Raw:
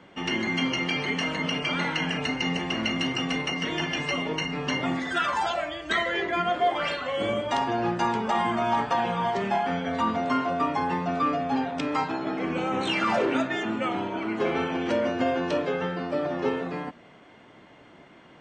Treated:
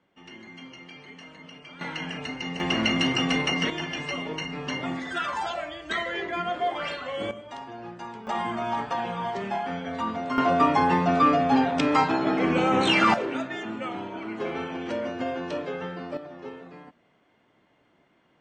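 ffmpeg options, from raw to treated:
ffmpeg -i in.wav -af "asetnsamples=nb_out_samples=441:pad=0,asendcmd='1.81 volume volume -6dB;2.6 volume volume 3.5dB;3.7 volume volume -3.5dB;7.31 volume volume -13.5dB;8.27 volume volume -4dB;10.38 volume volume 5.5dB;13.14 volume volume -5dB;16.17 volume volume -13dB',volume=-18dB" out.wav

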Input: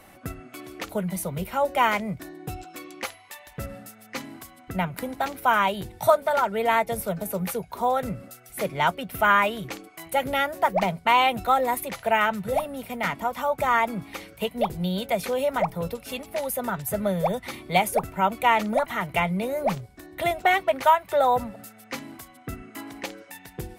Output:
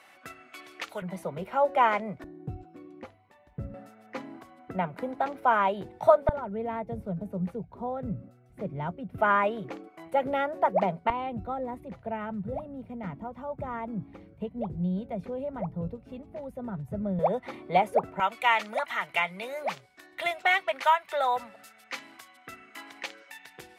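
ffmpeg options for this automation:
ffmpeg -i in.wav -af "asetnsamples=nb_out_samples=441:pad=0,asendcmd='1.02 bandpass f 690;2.24 bandpass f 130;3.74 bandpass f 530;6.29 bandpass f 120;9.18 bandpass f 440;11.1 bandpass f 110;17.19 bandpass f 540;18.2 bandpass f 2400',bandpass=frequency=2300:width_type=q:width=0.6:csg=0" out.wav

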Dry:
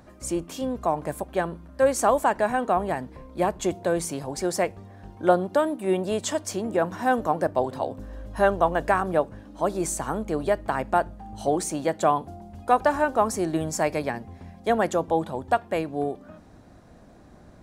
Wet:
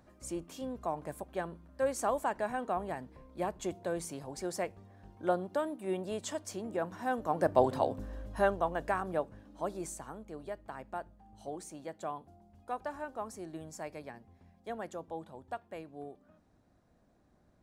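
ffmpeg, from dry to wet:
ffmpeg -i in.wav -af "volume=-0.5dB,afade=type=in:start_time=7.24:duration=0.4:silence=0.298538,afade=type=out:start_time=7.64:duration=0.98:silence=0.316228,afade=type=out:start_time=9.56:duration=0.6:silence=0.421697" out.wav

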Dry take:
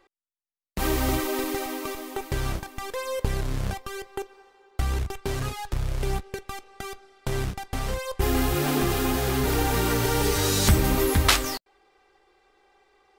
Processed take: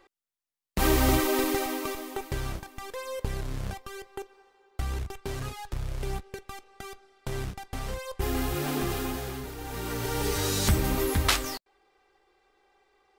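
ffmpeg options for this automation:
ffmpeg -i in.wav -af "volume=14.5dB,afade=type=out:start_time=1.45:duration=1.05:silence=0.421697,afade=type=out:start_time=8.93:duration=0.62:silence=0.266073,afade=type=in:start_time=9.55:duration=0.78:silence=0.237137" out.wav

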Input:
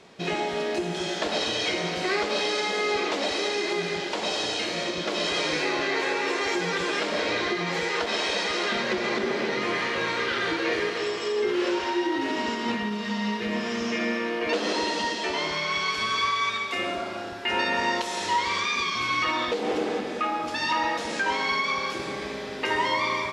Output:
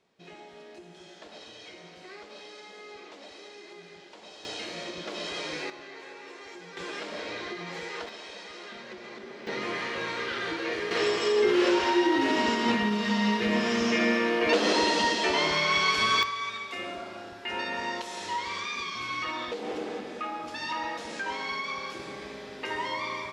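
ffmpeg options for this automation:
ffmpeg -i in.wav -af "asetnsamples=nb_out_samples=441:pad=0,asendcmd='4.45 volume volume -8.5dB;5.7 volume volume -18.5dB;6.77 volume volume -10dB;8.09 volume volume -16.5dB;9.47 volume volume -5.5dB;10.91 volume volume 2.5dB;16.23 volume volume -7.5dB',volume=-20dB" out.wav

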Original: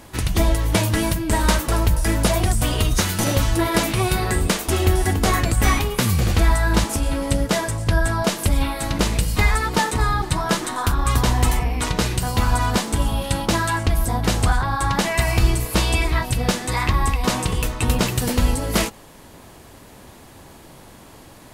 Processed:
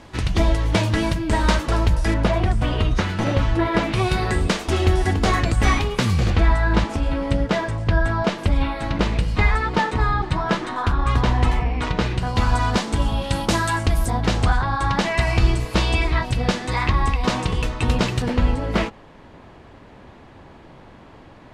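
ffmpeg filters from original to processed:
ffmpeg -i in.wav -af "asetnsamples=nb_out_samples=441:pad=0,asendcmd='2.14 lowpass f 2700;3.93 lowpass f 5200;6.3 lowpass f 3200;12.36 lowpass f 5600;13.33 lowpass f 9500;14.1 lowpass f 4800;18.22 lowpass f 2700',lowpass=5000" out.wav

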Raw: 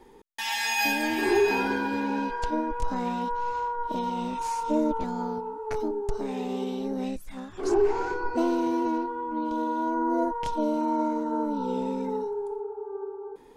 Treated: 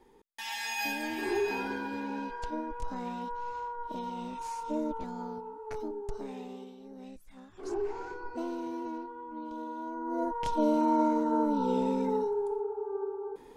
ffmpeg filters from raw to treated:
ffmpeg -i in.wav -af "volume=11.5dB,afade=type=out:start_time=6.22:duration=0.54:silence=0.281838,afade=type=in:start_time=6.76:duration=0.93:silence=0.398107,afade=type=in:start_time=10.03:duration=0.65:silence=0.266073" out.wav

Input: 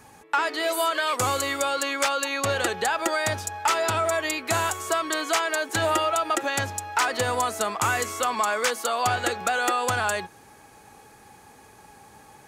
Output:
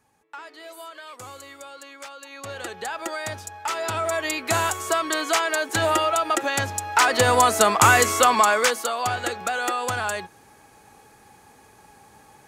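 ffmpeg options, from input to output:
ffmpeg -i in.wav -af "volume=9dB,afade=type=in:start_time=2.2:duration=0.79:silence=0.298538,afade=type=in:start_time=3.66:duration=0.82:silence=0.421697,afade=type=in:start_time=6.67:duration=0.93:silence=0.446684,afade=type=out:start_time=8.19:duration=0.76:silence=0.298538" out.wav

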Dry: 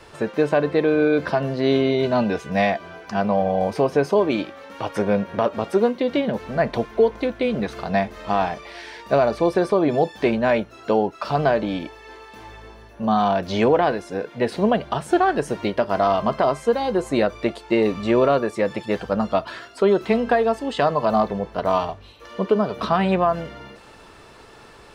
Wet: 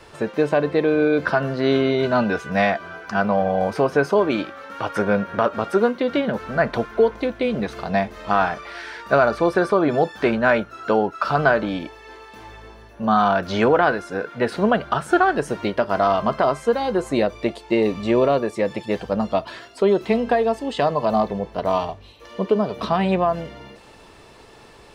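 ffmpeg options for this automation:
ffmpeg -i in.wav -af "asetnsamples=nb_out_samples=441:pad=0,asendcmd='1.25 equalizer g 10;7.14 equalizer g 1.5;8.31 equalizer g 12;11.69 equalizer g 1;13.06 equalizer g 11;15.23 equalizer g 4;17.13 equalizer g -5.5',equalizer=frequency=1400:width_type=o:width=0.47:gain=0" out.wav

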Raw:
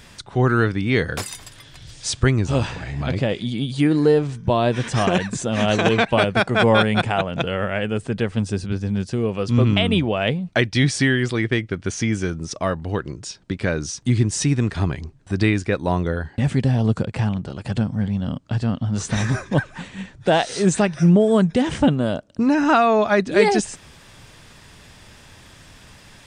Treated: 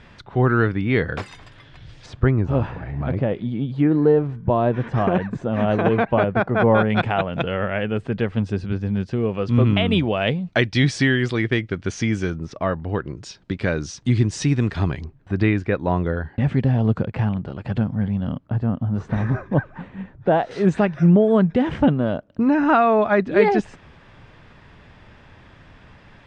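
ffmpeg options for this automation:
ffmpeg -i in.wav -af "asetnsamples=nb_out_samples=441:pad=0,asendcmd='2.06 lowpass f 1400;6.9 lowpass f 2900;9.88 lowpass f 5000;12.36 lowpass f 2400;13.17 lowpass f 4600;15.05 lowpass f 2400;18.46 lowpass f 1300;20.51 lowpass f 2200',lowpass=2500" out.wav

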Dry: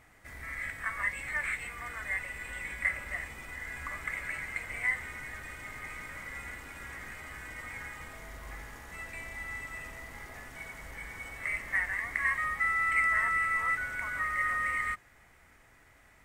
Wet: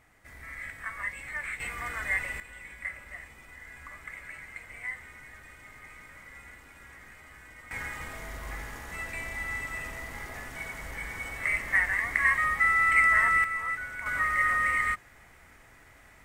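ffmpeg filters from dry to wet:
ffmpeg -i in.wav -af "asetnsamples=nb_out_samples=441:pad=0,asendcmd='1.6 volume volume 5dB;2.4 volume volume -6.5dB;7.71 volume volume 5.5dB;13.44 volume volume -2dB;14.06 volume volume 5dB',volume=-2.5dB" out.wav

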